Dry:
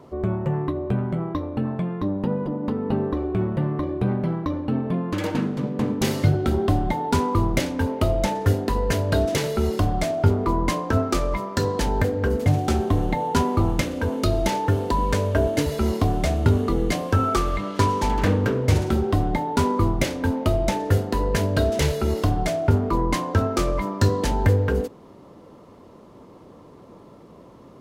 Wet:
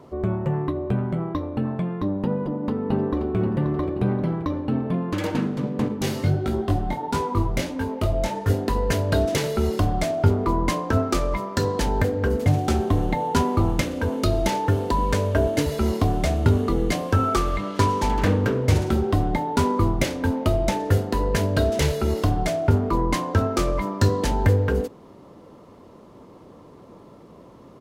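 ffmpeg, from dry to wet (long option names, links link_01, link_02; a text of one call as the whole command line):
ffmpeg -i in.wav -filter_complex "[0:a]asplit=2[link_01][link_02];[link_02]afade=type=in:start_time=2.37:duration=0.01,afade=type=out:start_time=3.36:duration=0.01,aecho=0:1:530|1060|1590|2120|2650|3180:0.354813|0.195147|0.107331|0.0590321|0.0324676|0.0178572[link_03];[link_01][link_03]amix=inputs=2:normalize=0,asettb=1/sr,asplit=3[link_04][link_05][link_06];[link_04]atrim=end=5.884[link_07];[link_05]atrim=start=5.88:end=8.5,asetpts=PTS-STARTPTS,afade=type=in:duration=0.004:curve=qsin,afade=type=out:start_time=2.616:duration=0.004:curve=qsin,flanger=delay=18:depth=4.8:speed=1.5[link_08];[link_06]atrim=start=8.496[link_09];[link_07][link_08]acrossfade=duration=0.004:curve1=hsin:curve2=qsin[link_10];[link_10][link_09]acrossfade=duration=0.004:curve1=qsin:curve2=hsin" out.wav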